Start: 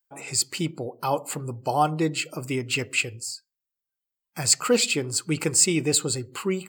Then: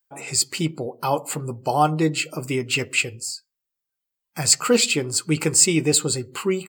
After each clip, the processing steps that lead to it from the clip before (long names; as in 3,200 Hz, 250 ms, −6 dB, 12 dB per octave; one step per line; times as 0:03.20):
double-tracking delay 13 ms −12 dB
level +3 dB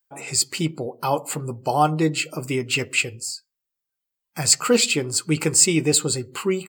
no processing that can be heard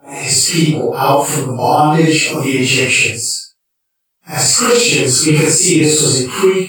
random phases in long frames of 200 ms
convolution reverb, pre-delay 35 ms, DRR 8.5 dB
boost into a limiter +13.5 dB
level −1 dB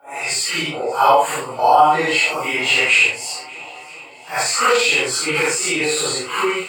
three-way crossover with the lows and the highs turned down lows −23 dB, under 560 Hz, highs −13 dB, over 3,100 Hz
feedback echo with a long and a short gap by turns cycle 983 ms, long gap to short 1.5 to 1, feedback 54%, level −22 dB
level +2 dB